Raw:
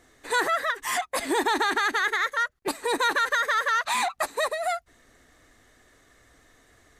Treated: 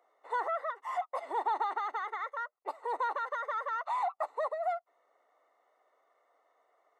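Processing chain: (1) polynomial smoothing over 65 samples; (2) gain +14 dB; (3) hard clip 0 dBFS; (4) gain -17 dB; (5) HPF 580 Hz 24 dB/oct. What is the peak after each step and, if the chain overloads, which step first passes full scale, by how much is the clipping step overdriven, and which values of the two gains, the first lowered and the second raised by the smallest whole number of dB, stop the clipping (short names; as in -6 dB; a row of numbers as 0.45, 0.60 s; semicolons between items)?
-16.0, -2.0, -2.0, -19.0, -21.5 dBFS; no overload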